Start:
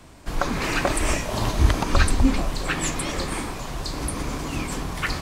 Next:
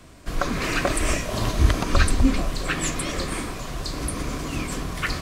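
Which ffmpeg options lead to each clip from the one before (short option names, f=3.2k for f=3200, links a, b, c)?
-af "bandreject=f=860:w=5.1"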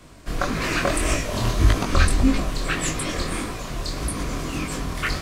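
-af "flanger=delay=18.5:depth=6.7:speed=1.7,volume=4dB"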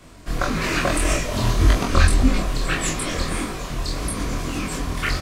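-filter_complex "[0:a]asplit=2[a][b];[b]adelay=24,volume=-4dB[c];[a][c]amix=inputs=2:normalize=0"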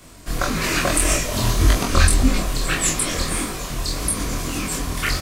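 -af "crystalizer=i=1.5:c=0"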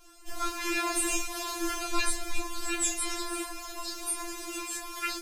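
-af "afftfilt=real='re*4*eq(mod(b,16),0)':imag='im*4*eq(mod(b,16),0)':win_size=2048:overlap=0.75,volume=-7.5dB"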